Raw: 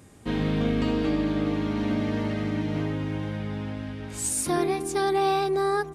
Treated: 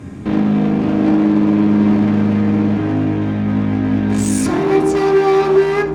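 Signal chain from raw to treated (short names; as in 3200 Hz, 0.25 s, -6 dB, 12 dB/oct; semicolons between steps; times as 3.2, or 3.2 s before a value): RIAA curve playback; in parallel at -0.5 dB: vocal rider; on the sum: limiter -12 dBFS, peak gain reduction 10.5 dB; one-sided clip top -24.5 dBFS, bottom -17 dBFS; reverb RT60 0.40 s, pre-delay 3 ms, DRR 2 dB; gain +7 dB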